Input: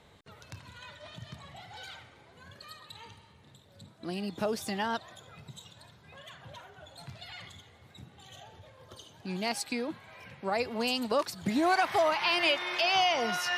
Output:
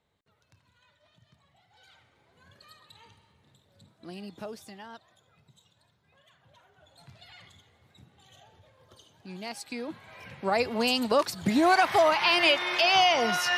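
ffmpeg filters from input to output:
-af "volume=12dB,afade=t=in:st=1.69:d=0.83:silence=0.266073,afade=t=out:st=4.24:d=0.54:silence=0.421697,afade=t=in:st=6.48:d=0.7:silence=0.421697,afade=t=in:st=9.62:d=0.82:silence=0.298538"

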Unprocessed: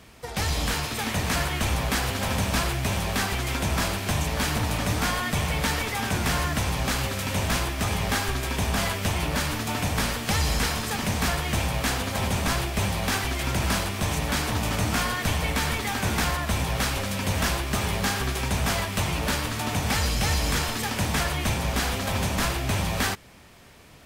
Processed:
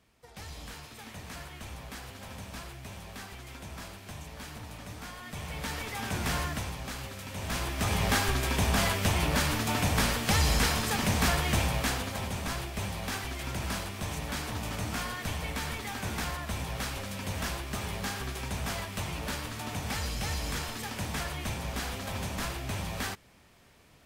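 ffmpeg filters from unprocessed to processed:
-af "volume=6dB,afade=t=in:st=5.17:d=1.19:silence=0.251189,afade=t=out:st=6.36:d=0.42:silence=0.446684,afade=t=in:st=7.36:d=0.69:silence=0.266073,afade=t=out:st=11.5:d=0.76:silence=0.398107"

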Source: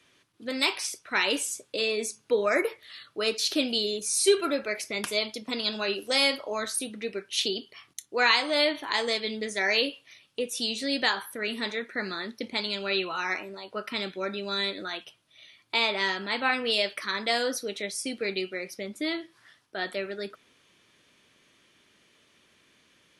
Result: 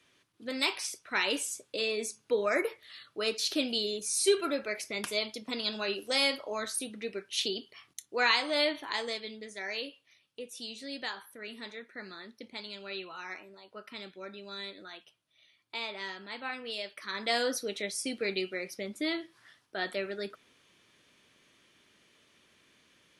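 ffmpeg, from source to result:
-af "volume=6dB,afade=t=out:st=8.68:d=0.71:silence=0.398107,afade=t=in:st=16.95:d=0.44:silence=0.316228"

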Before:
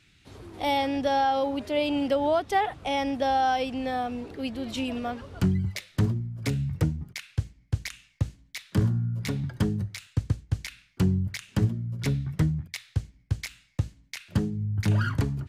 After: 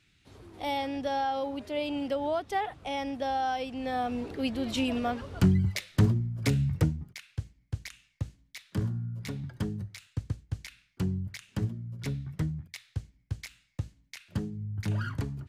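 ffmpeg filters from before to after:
-af "volume=1.5dB,afade=t=in:st=3.73:d=0.5:silence=0.421697,afade=t=out:st=6.68:d=0.46:silence=0.375837"

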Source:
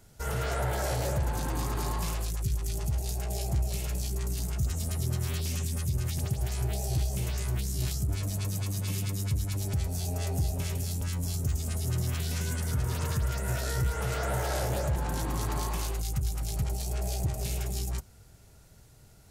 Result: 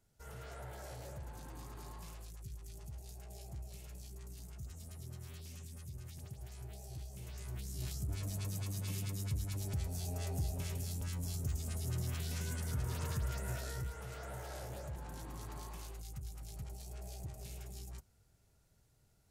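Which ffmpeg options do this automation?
-af "volume=-8dB,afade=t=in:st=7.14:d=1.14:silence=0.316228,afade=t=out:st=13.36:d=0.65:silence=0.421697"

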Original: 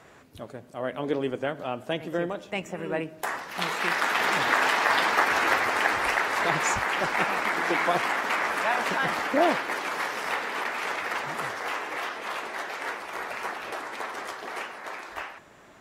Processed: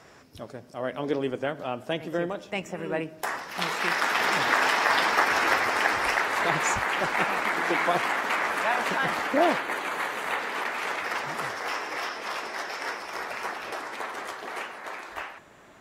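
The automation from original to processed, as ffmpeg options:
-af "asetnsamples=n=441:p=0,asendcmd='1.16 equalizer g 5;6.24 equalizer g -2;9.59 equalizer g -12.5;10.39 equalizer g -1;11.04 equalizer g 5;11.69 equalizer g 12;13.25 equalizer g 5.5;13.95 equalizer g -2',equalizer=f=5.3k:t=o:w=0.24:g=12.5"

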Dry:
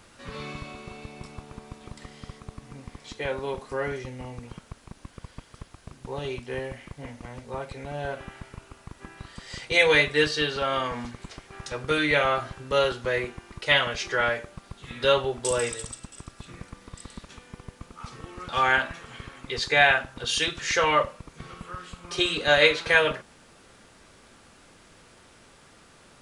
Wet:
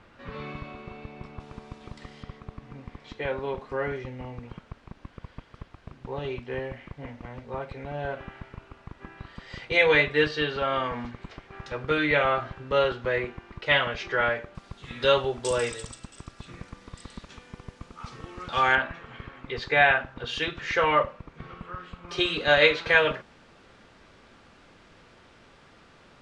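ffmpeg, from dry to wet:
-af "asetnsamples=n=441:p=0,asendcmd='1.4 lowpass f 4900;2.23 lowpass f 3000;14.55 lowpass f 6200;18.75 lowpass f 2600;22.09 lowpass f 4100',lowpass=2.6k"

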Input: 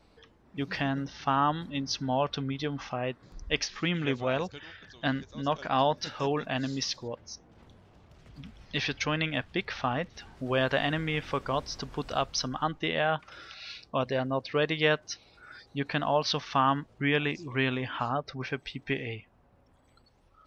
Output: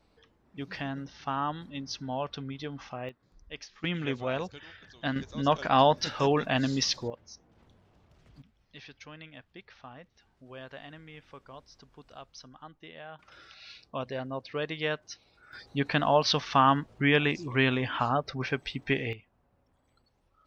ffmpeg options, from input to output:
-af "asetnsamples=n=441:p=0,asendcmd='3.09 volume volume -14dB;3.84 volume volume -2.5dB;5.16 volume volume 4dB;7.1 volume volume -6dB;8.42 volume volume -18dB;13.19 volume volume -6dB;15.53 volume volume 3dB;19.13 volume volume -7dB',volume=-5.5dB"

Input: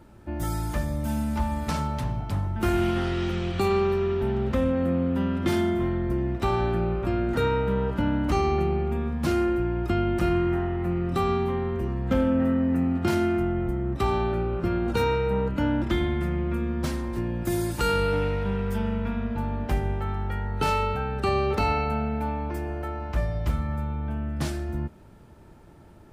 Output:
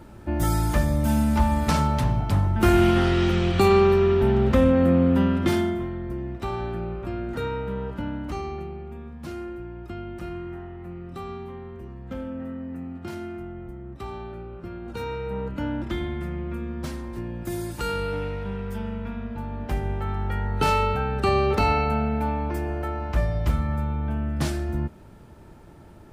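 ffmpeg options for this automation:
-af "volume=20dB,afade=t=out:st=5.14:d=0.73:silence=0.281838,afade=t=out:st=7.9:d=0.84:silence=0.501187,afade=t=in:st=14.81:d=0.71:silence=0.446684,afade=t=in:st=19.48:d=0.97:silence=0.446684"

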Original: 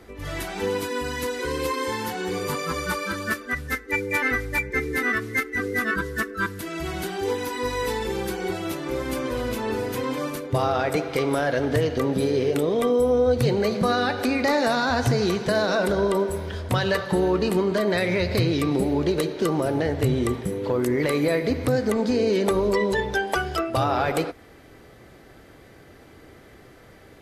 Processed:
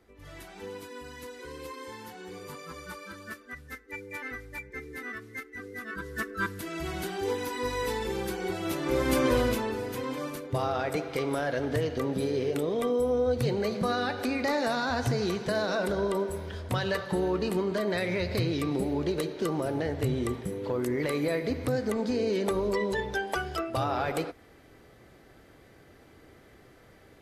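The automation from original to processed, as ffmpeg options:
-af "volume=4dB,afade=t=in:st=5.88:d=0.48:silence=0.298538,afade=t=in:st=8.56:d=0.75:silence=0.375837,afade=t=out:st=9.31:d=0.41:silence=0.298538"

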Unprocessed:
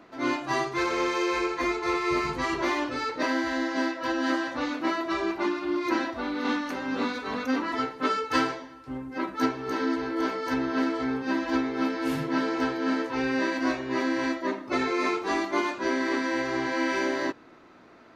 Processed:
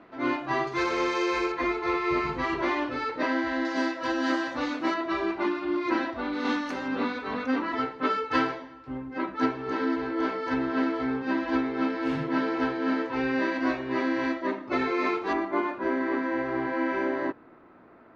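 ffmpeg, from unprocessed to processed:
-af "asetnsamples=n=441:p=0,asendcmd='0.67 lowpass f 6100;1.52 lowpass f 3300;3.65 lowpass f 7400;4.94 lowpass f 3700;6.33 lowpass f 7700;6.88 lowpass f 3400;15.33 lowpass f 1700',lowpass=3k"

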